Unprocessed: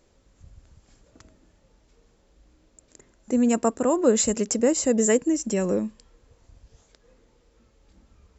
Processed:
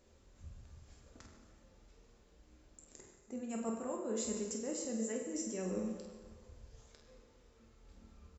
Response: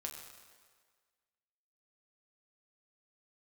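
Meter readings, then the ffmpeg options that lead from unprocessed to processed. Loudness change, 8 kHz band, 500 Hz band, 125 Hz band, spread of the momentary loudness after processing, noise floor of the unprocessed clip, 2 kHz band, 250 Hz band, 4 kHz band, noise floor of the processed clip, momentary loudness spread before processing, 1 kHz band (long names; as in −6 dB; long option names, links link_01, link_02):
−17.0 dB, can't be measured, −17.5 dB, −13.0 dB, 21 LU, −63 dBFS, −18.0 dB, −16.5 dB, −15.0 dB, −66 dBFS, 6 LU, −17.5 dB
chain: -filter_complex "[0:a]areverse,acompressor=threshold=-32dB:ratio=16,areverse,asplit=2[link_01][link_02];[link_02]adelay=49,volume=-8dB[link_03];[link_01][link_03]amix=inputs=2:normalize=0[link_04];[1:a]atrim=start_sample=2205[link_05];[link_04][link_05]afir=irnorm=-1:irlink=0,volume=-2dB"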